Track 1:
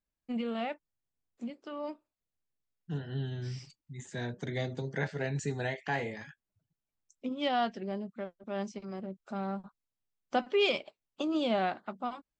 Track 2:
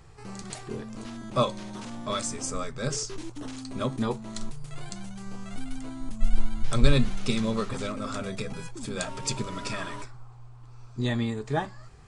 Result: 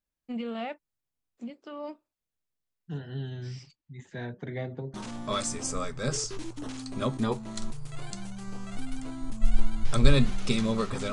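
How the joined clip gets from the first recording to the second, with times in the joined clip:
track 1
0:03.63–0:04.94: low-pass filter 5,700 Hz → 1,500 Hz
0:04.94: continue with track 2 from 0:01.73

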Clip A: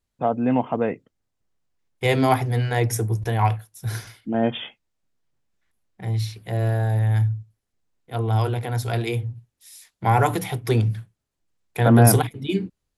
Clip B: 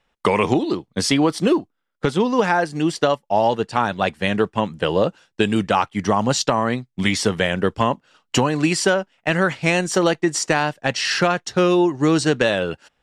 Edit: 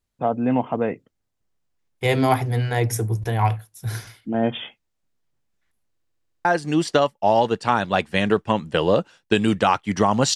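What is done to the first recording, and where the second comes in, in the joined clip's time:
clip A
0:05.89: stutter in place 0.07 s, 8 plays
0:06.45: continue with clip B from 0:02.53

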